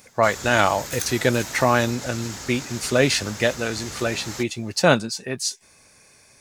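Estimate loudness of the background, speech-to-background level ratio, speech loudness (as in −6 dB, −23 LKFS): −33.5 LKFS, 11.0 dB, −22.5 LKFS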